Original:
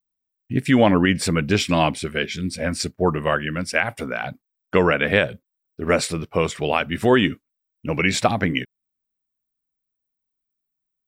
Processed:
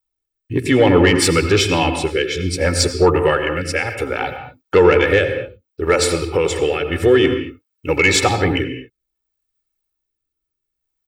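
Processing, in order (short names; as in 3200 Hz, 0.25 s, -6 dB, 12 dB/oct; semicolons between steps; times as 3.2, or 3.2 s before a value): bell 140 Hz -13 dB 0.23 oct; comb 2.3 ms, depth 89%; in parallel at +2 dB: limiter -11 dBFS, peak gain reduction 9 dB; 5.95–6.94 on the sum: compressor, threshold -12 dBFS, peak gain reduction 5.5 dB; rotary speaker horn 0.6 Hz; soft clip -3 dBFS, distortion -21 dB; on a send at -7 dB: reverb, pre-delay 76 ms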